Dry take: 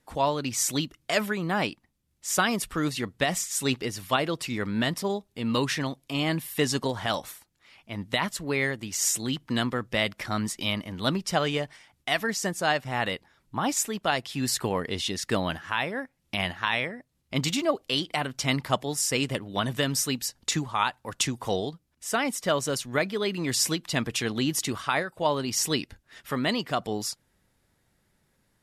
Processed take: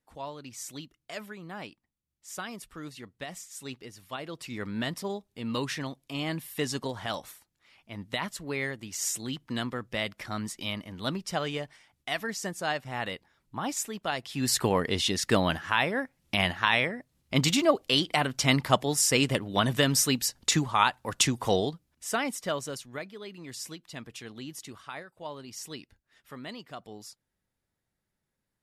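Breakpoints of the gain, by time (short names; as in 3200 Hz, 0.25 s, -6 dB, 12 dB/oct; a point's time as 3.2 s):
4.1 s -14 dB
4.62 s -5.5 dB
14.18 s -5.5 dB
14.59 s +2.5 dB
21.62 s +2.5 dB
22.54 s -6 dB
23.15 s -14.5 dB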